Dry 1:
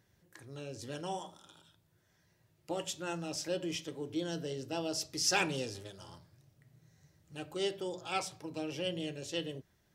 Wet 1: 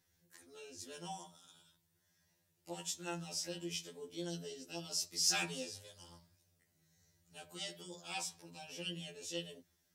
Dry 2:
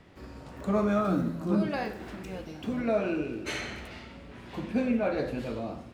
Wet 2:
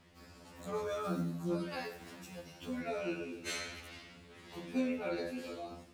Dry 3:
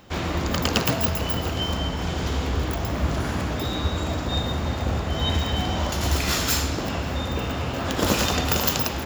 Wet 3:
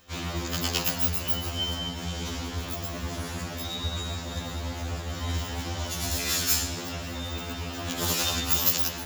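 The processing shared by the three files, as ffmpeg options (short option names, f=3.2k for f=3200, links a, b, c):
-af "crystalizer=i=3.5:c=0,highshelf=f=11k:g=-7.5,afftfilt=real='re*2*eq(mod(b,4),0)':imag='im*2*eq(mod(b,4),0)':win_size=2048:overlap=0.75,volume=-7dB"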